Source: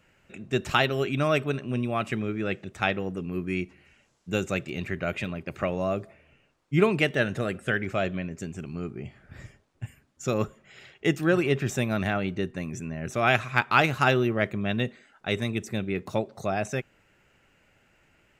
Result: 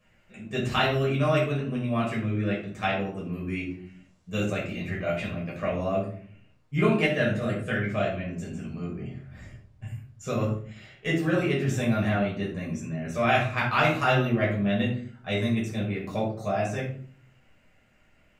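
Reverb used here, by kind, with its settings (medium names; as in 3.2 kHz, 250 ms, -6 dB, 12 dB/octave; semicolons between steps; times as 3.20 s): simulated room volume 470 m³, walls furnished, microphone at 5.8 m; trim -9.5 dB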